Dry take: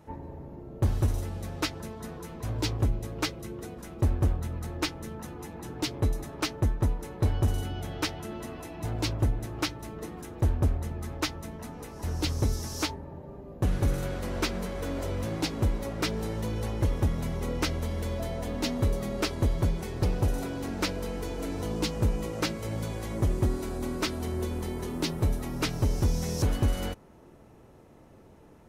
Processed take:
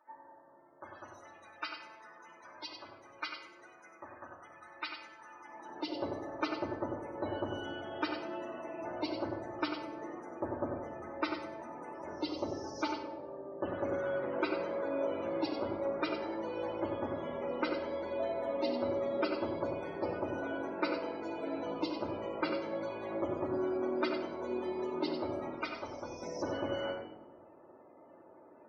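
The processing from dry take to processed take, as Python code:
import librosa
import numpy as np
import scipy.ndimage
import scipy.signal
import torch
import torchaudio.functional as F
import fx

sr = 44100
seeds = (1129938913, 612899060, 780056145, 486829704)

y = x + 10.0 ** (-6.0 / 20.0) * np.pad(x, (int(94 * sr / 1000.0), 0))[:len(x)]
y = fx.spec_topn(y, sr, count=64)
y = fx.peak_eq(y, sr, hz=210.0, db=-10.0, octaves=3.0, at=(25.54, 26.22))
y = fx.filter_sweep_highpass(y, sr, from_hz=1400.0, to_hz=490.0, start_s=5.3, end_s=5.97, q=0.86)
y = fx.spacing_loss(y, sr, db_at_10k=21)
y = fx.room_shoebox(y, sr, seeds[0], volume_m3=3300.0, walls='furnished', distance_m=2.6)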